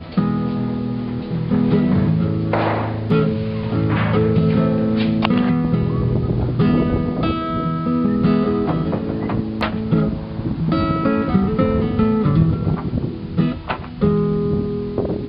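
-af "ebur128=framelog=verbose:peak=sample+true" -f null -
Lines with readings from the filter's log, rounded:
Integrated loudness:
  I:         -19.1 LUFS
  Threshold: -29.1 LUFS
Loudness range:
  LRA:         2.0 LU
  Threshold: -38.9 LUFS
  LRA low:   -19.9 LUFS
  LRA high:  -17.9 LUFS
Sample peak:
  Peak:       -1.3 dBFS
True peak:
  Peak:       -1.3 dBFS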